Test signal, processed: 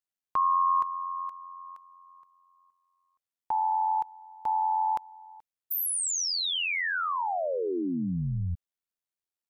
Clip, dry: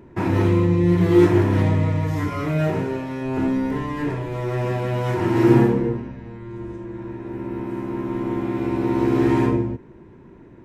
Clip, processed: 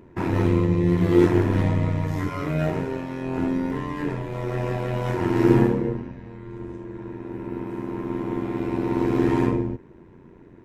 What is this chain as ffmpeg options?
-af "tremolo=f=88:d=0.621"

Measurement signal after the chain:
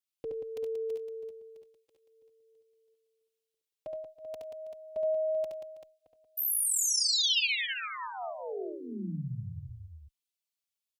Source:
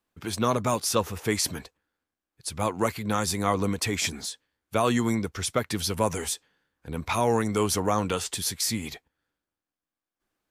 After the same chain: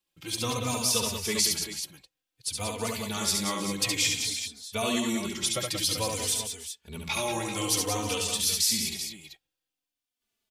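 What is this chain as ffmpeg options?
-filter_complex "[0:a]highshelf=f=2100:t=q:w=1.5:g=8.5,aecho=1:1:70|93|182|324|387:0.668|0.119|0.422|0.141|0.316,asplit=2[s0][s1];[s1]adelay=3.2,afreqshift=-0.54[s2];[s0][s2]amix=inputs=2:normalize=1,volume=0.596"

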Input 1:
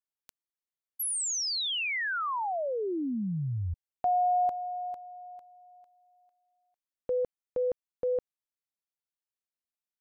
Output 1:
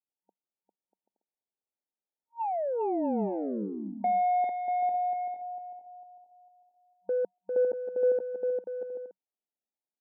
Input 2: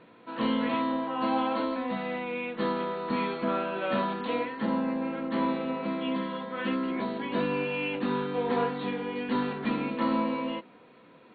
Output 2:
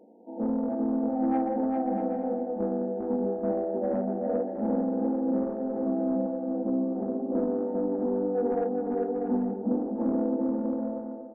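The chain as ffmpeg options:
-af "afftfilt=real='re*between(b*sr/4096,190,930)':imag='im*between(b*sr/4096,190,930)':win_size=4096:overlap=0.75,asoftclip=type=tanh:threshold=0.0841,aecho=1:1:400|640|784|870.4|922.2:0.631|0.398|0.251|0.158|0.1,volume=1.19"

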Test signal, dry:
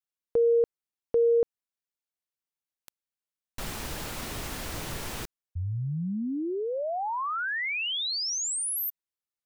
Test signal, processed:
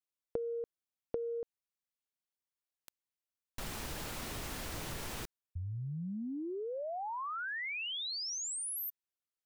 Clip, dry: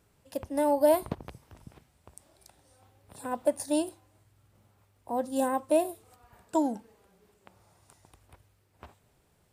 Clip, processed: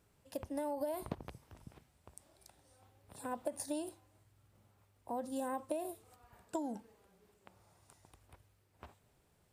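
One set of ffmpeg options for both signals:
-af "acompressor=threshold=0.02:ratio=10:attack=32:release=69:knee=6:detection=peak,volume=0.596"

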